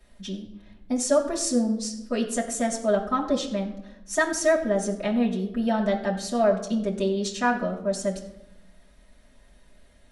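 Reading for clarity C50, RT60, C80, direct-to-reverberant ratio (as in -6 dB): 9.5 dB, 0.95 s, 11.5 dB, -5.0 dB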